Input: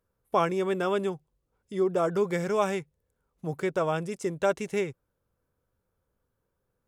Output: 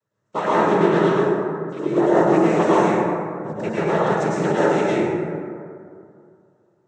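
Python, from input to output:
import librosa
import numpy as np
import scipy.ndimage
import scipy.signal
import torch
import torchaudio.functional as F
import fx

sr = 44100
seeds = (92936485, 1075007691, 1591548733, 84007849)

y = fx.noise_vocoder(x, sr, seeds[0], bands=12)
y = fx.rev_plate(y, sr, seeds[1], rt60_s=2.4, hf_ratio=0.35, predelay_ms=90, drr_db=-9.0)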